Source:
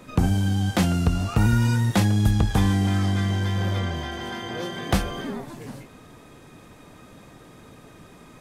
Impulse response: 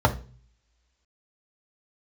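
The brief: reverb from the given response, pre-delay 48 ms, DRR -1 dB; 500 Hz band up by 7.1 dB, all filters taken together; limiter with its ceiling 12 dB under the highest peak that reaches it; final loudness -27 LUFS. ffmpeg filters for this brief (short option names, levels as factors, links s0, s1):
-filter_complex "[0:a]equalizer=f=500:t=o:g=9,alimiter=limit=0.133:level=0:latency=1,asplit=2[s0][s1];[1:a]atrim=start_sample=2205,adelay=48[s2];[s1][s2]afir=irnorm=-1:irlink=0,volume=0.15[s3];[s0][s3]amix=inputs=2:normalize=0,volume=0.282"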